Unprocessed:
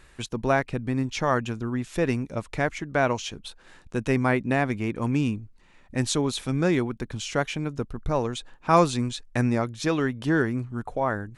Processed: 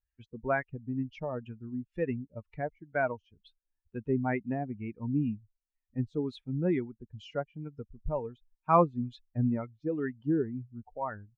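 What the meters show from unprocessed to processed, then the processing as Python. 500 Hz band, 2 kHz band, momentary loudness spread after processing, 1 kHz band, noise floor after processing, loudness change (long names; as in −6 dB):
−6.5 dB, −10.5 dB, 13 LU, −6.5 dB, below −85 dBFS, −7.0 dB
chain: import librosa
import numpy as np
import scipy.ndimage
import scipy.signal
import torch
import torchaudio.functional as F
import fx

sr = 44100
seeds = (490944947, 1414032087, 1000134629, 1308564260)

y = fx.bin_expand(x, sr, power=2.0)
y = fx.filter_lfo_lowpass(y, sr, shape='sine', hz=2.1, low_hz=520.0, high_hz=2200.0, q=0.93)
y = y * 10.0 ** (-2.5 / 20.0)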